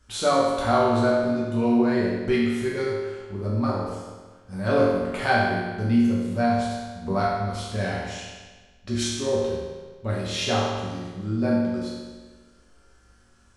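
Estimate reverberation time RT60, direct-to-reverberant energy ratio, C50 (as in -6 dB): 1.4 s, -7.0 dB, -0.5 dB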